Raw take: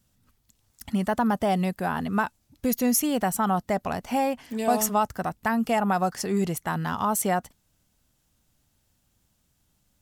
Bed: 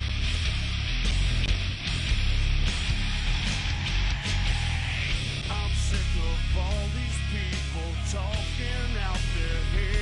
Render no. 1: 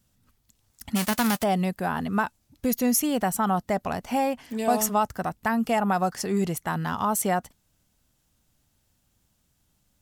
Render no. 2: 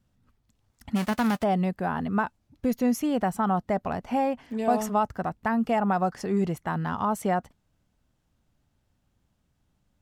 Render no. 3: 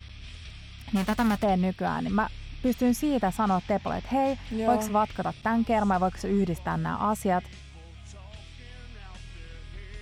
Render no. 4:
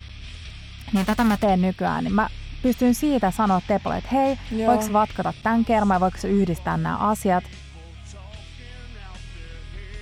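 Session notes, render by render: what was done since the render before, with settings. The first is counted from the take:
0.95–1.42 s: formants flattened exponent 0.3
low-pass 1.7 kHz 6 dB/octave
add bed -16 dB
trim +5 dB

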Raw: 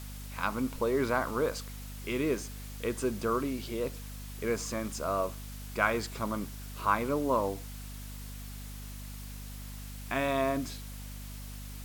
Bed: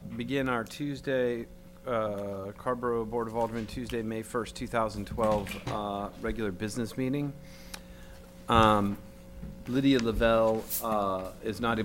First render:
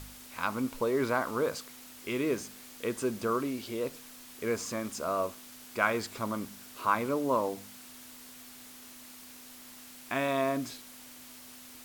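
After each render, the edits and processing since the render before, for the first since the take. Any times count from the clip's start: de-hum 50 Hz, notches 4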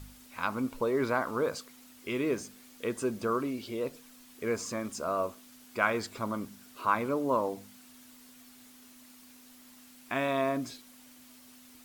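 noise reduction 7 dB, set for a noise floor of -50 dBFS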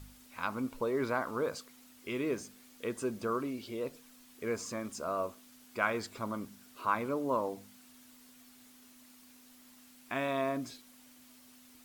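trim -3.5 dB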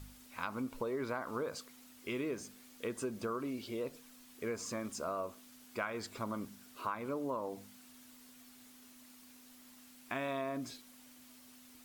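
compression 6:1, threshold -34 dBFS, peak gain reduction 10.5 dB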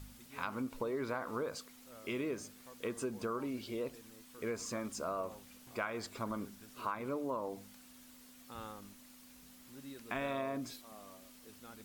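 add bed -26 dB

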